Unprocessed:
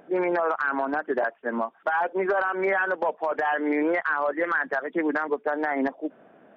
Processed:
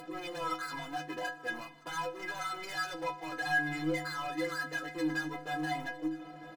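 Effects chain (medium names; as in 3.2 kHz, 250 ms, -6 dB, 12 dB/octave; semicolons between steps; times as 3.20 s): dynamic bell 520 Hz, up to -6 dB, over -39 dBFS, Q 0.89; in parallel at +1 dB: compression, threshold -36 dBFS, peak gain reduction 13 dB; on the sum: waveshaping leveller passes 5; upward compressor, threshold -23 dBFS; inharmonic resonator 150 Hz, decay 0.51 s, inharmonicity 0.03; delay 956 ms -20.5 dB; FDN reverb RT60 1.8 s, low-frequency decay 1.35×, high-frequency decay 0.9×, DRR 17 dB; trim -6.5 dB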